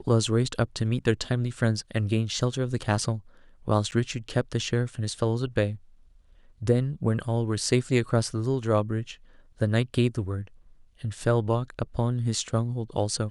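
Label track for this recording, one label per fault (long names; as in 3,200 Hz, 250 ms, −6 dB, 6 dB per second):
3.910000	3.920000	drop-out 9.8 ms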